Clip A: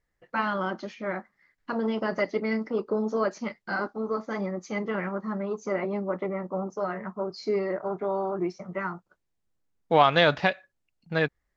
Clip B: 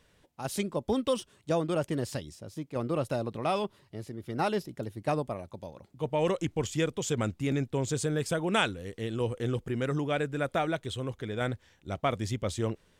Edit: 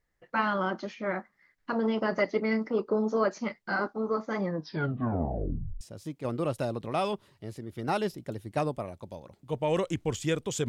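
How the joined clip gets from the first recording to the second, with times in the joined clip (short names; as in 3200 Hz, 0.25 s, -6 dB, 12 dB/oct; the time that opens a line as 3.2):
clip A
4.41 tape stop 1.40 s
5.81 switch to clip B from 2.32 s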